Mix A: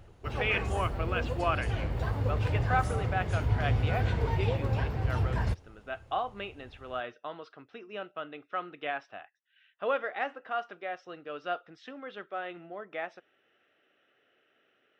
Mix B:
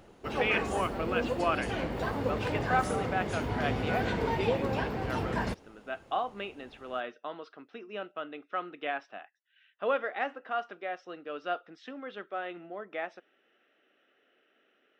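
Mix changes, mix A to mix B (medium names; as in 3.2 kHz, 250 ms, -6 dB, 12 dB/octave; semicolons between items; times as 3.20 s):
background +4.0 dB; master: add resonant low shelf 150 Hz -12 dB, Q 1.5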